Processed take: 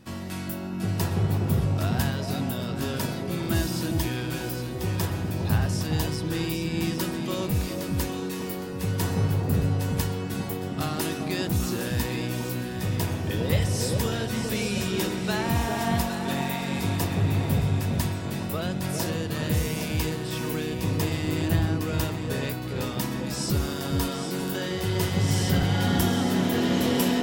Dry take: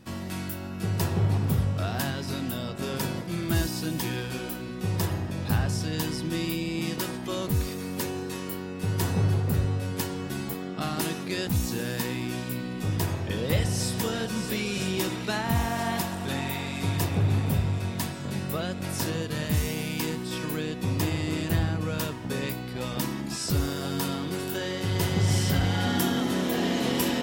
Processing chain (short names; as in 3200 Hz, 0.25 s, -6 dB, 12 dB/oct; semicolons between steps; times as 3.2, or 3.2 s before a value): echo with dull and thin repeats by turns 0.406 s, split 880 Hz, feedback 54%, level -2.5 dB